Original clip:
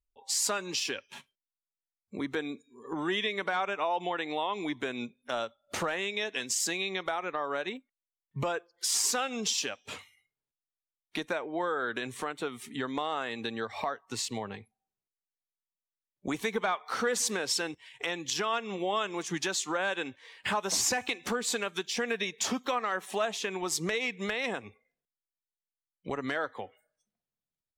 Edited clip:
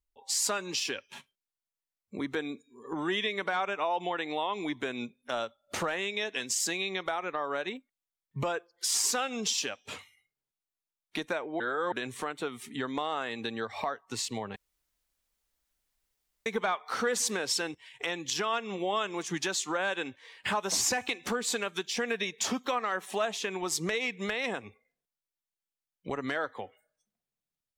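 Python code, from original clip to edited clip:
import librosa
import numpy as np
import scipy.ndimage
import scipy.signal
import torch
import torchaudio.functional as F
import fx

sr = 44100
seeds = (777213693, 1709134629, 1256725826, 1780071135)

y = fx.edit(x, sr, fx.reverse_span(start_s=11.6, length_s=0.32),
    fx.room_tone_fill(start_s=14.56, length_s=1.9), tone=tone)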